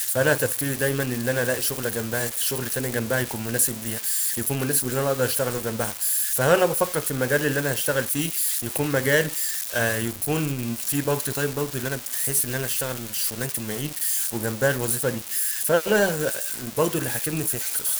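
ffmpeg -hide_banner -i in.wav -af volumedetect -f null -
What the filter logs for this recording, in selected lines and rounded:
mean_volume: -24.6 dB
max_volume: -4.3 dB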